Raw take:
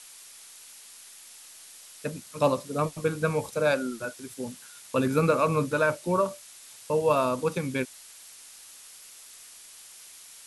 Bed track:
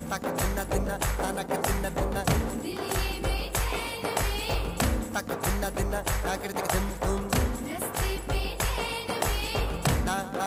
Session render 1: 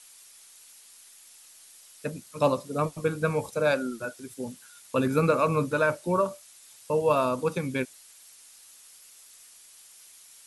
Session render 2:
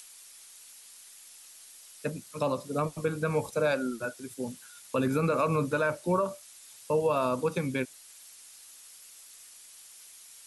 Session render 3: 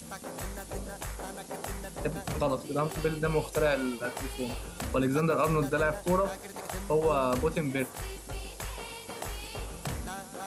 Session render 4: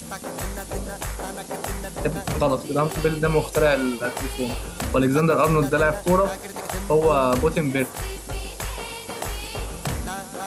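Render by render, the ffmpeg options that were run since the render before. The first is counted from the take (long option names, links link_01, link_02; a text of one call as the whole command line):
ffmpeg -i in.wav -af "afftdn=noise_reduction=6:noise_floor=-49" out.wav
ffmpeg -i in.wav -filter_complex "[0:a]acrossover=split=110|1600[link_01][link_02][link_03];[link_03]acompressor=mode=upward:threshold=-47dB:ratio=2.5[link_04];[link_01][link_02][link_04]amix=inputs=3:normalize=0,alimiter=limit=-17.5dB:level=0:latency=1:release=98" out.wav
ffmpeg -i in.wav -i bed.wav -filter_complex "[1:a]volume=-10.5dB[link_01];[0:a][link_01]amix=inputs=2:normalize=0" out.wav
ffmpeg -i in.wav -af "volume=8dB" out.wav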